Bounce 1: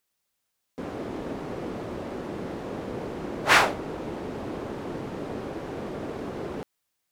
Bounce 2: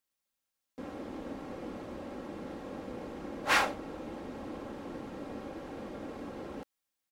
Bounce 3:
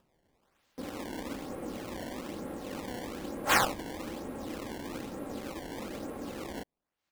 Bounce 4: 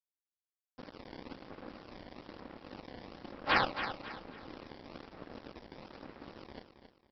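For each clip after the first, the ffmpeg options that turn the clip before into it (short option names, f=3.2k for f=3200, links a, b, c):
-af "aecho=1:1:3.7:0.45,volume=-8.5dB"
-af "aemphasis=mode=reproduction:type=cd,acompressor=mode=upward:threshold=-59dB:ratio=2.5,acrusher=samples=20:mix=1:aa=0.000001:lfo=1:lforange=32:lforate=1.1,volume=2dB"
-af "aresample=11025,aeval=exprs='sgn(val(0))*max(abs(val(0))-0.0112,0)':c=same,aresample=44100,aecho=1:1:272|544|816|1088:0.335|0.117|0.041|0.0144,volume=-1.5dB"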